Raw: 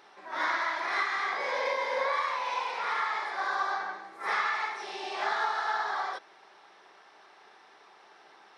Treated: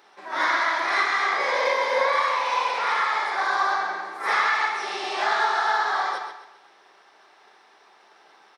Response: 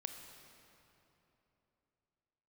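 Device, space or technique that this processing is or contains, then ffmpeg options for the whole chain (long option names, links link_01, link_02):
keyed gated reverb: -filter_complex "[0:a]highpass=150,asplit=3[link_01][link_02][link_03];[1:a]atrim=start_sample=2205[link_04];[link_02][link_04]afir=irnorm=-1:irlink=0[link_05];[link_03]apad=whole_len=378147[link_06];[link_05][link_06]sidechaingate=range=-33dB:threshold=-52dB:ratio=16:detection=peak,volume=4.5dB[link_07];[link_01][link_07]amix=inputs=2:normalize=0,highshelf=frequency=7500:gain=5.5,aecho=1:1:133|266|399|532:0.299|0.107|0.0387|0.0139"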